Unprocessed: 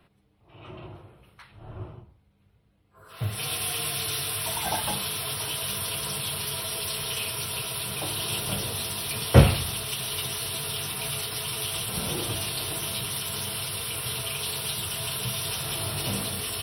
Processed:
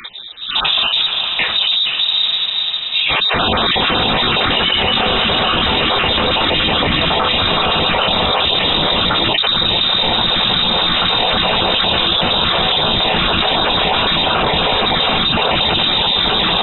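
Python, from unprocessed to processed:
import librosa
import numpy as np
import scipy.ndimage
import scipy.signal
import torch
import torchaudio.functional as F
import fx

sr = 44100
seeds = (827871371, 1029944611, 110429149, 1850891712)

p1 = fx.spec_dropout(x, sr, seeds[0], share_pct=27)
p2 = scipy.signal.sosfilt(scipy.signal.butter(2, 60.0, 'highpass', fs=sr, output='sos'), p1)
p3 = p2 + fx.echo_diffused(p2, sr, ms=457, feedback_pct=73, wet_db=-11.5, dry=0)
p4 = fx.freq_invert(p3, sr, carrier_hz=3800)
p5 = fx.env_flatten(p4, sr, amount_pct=100)
y = p5 * 10.0 ** (-5.0 / 20.0)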